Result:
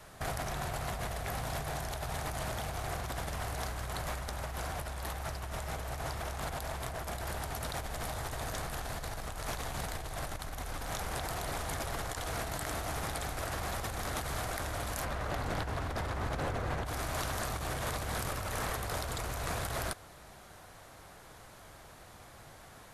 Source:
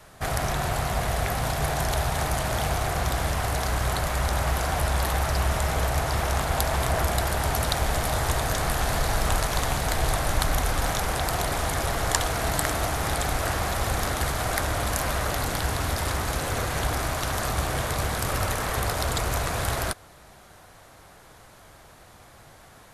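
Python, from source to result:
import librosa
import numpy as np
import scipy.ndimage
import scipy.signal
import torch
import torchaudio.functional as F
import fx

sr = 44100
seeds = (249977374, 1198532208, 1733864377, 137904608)

y = fx.lowpass(x, sr, hz=fx.line((15.04, 2500.0), (16.85, 1300.0)), slope=6, at=(15.04, 16.85), fade=0.02)
y = fx.over_compress(y, sr, threshold_db=-30.0, ratio=-1.0)
y = y * librosa.db_to_amplitude(-7.0)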